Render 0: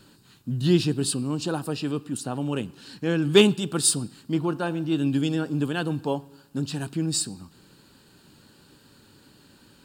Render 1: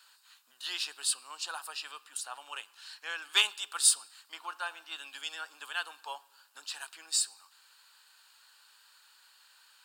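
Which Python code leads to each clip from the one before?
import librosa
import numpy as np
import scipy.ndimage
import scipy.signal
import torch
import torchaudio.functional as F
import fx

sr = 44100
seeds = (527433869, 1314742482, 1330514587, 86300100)

y = scipy.signal.sosfilt(scipy.signal.butter(4, 970.0, 'highpass', fs=sr, output='sos'), x)
y = F.gain(torch.from_numpy(y), -2.0).numpy()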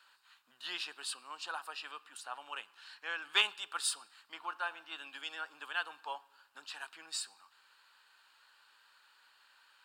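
y = fx.bass_treble(x, sr, bass_db=11, treble_db=-13)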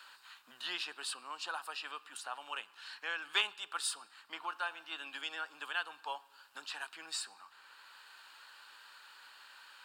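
y = fx.band_squash(x, sr, depth_pct=40)
y = F.gain(torch.from_numpy(y), 1.0).numpy()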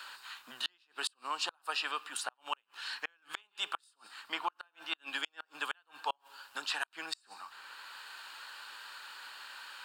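y = fx.gate_flip(x, sr, shuts_db=-28.0, range_db=-38)
y = F.gain(torch.from_numpy(y), 8.0).numpy()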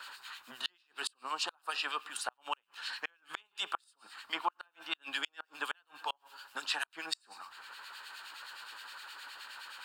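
y = fx.harmonic_tremolo(x, sr, hz=9.6, depth_pct=70, crossover_hz=1700.0)
y = F.gain(torch.from_numpy(y), 3.5).numpy()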